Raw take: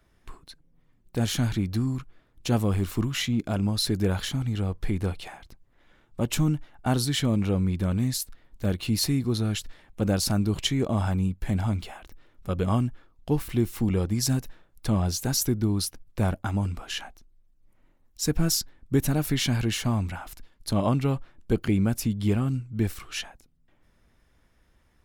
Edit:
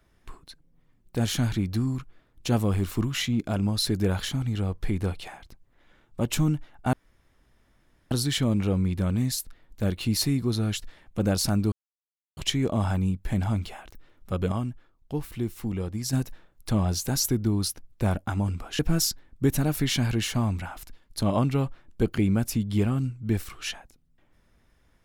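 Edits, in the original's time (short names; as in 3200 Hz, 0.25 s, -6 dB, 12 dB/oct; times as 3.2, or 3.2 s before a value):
6.93 insert room tone 1.18 s
10.54 insert silence 0.65 s
12.69–14.3 gain -5.5 dB
16.96–18.29 cut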